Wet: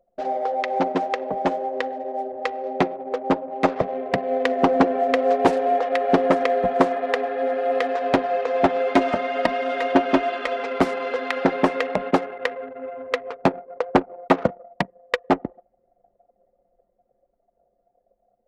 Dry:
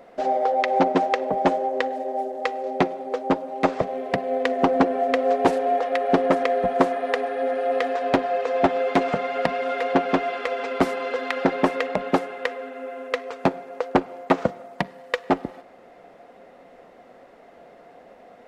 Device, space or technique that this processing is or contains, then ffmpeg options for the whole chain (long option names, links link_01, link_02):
voice memo with heavy noise removal: -filter_complex "[0:a]asettb=1/sr,asplit=3[link_01][link_02][link_03];[link_01]atrim=end=8.944[link_04];[link_02]atrim=start=8.94:end=10.57,asetpts=PTS-STARTPTS,afade=type=in:duration=0.004:curve=qsin,afade=type=out:start_time=1.626:duration=0.004:curve=qsin,aecho=1:1:3.2:0.58,atrim=end_sample=71883[link_05];[link_03]atrim=start=10.566[link_06];[link_04][link_05]acrossfade=duration=0.004:curve1=hsin:curve2=qsin[link_07];[link_07][link_06]acrossfade=duration=0.004:curve1=qsin:curve2=hsin,anlmdn=6.31,dynaudnorm=framelen=460:gausssize=11:maxgain=11.5dB,volume=-3dB"